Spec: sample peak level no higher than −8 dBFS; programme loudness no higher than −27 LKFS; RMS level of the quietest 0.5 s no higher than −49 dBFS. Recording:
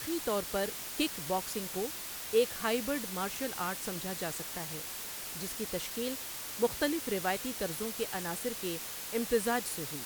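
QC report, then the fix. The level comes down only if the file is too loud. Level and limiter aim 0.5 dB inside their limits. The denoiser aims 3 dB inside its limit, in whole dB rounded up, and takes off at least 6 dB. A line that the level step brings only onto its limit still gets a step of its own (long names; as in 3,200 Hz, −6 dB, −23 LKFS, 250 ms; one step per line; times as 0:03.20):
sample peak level −14.5 dBFS: in spec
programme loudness −34.0 LKFS: in spec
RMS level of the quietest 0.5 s −41 dBFS: out of spec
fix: broadband denoise 11 dB, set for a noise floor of −41 dBFS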